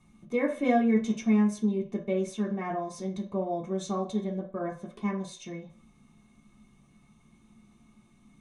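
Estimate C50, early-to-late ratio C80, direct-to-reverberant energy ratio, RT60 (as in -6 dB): 11.5 dB, 16.5 dB, -4.5 dB, 0.50 s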